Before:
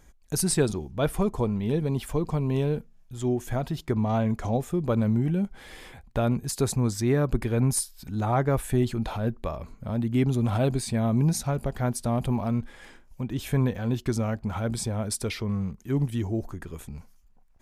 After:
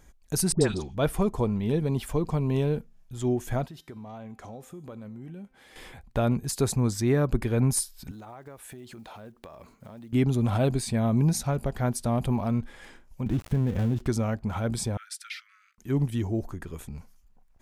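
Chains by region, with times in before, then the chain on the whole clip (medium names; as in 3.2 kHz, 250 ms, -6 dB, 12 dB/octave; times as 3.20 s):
0.52–0.95 s: low-pass 6.5 kHz + phase dispersion highs, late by 91 ms, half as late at 1.1 kHz
3.66–5.76 s: high-pass 170 Hz 6 dB/octave + compression 4:1, threshold -31 dBFS + feedback comb 260 Hz, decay 0.92 s
8.11–10.13 s: block-companded coder 7-bit + high-pass 320 Hz 6 dB/octave + compression 8:1, threshold -41 dBFS
13.26–14.07 s: dead-time distortion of 0.24 ms + bass shelf 420 Hz +11 dB + compression, threshold -21 dBFS
14.97–15.78 s: steep high-pass 1.3 kHz 96 dB/octave + treble shelf 4.8 kHz -11 dB
whole clip: none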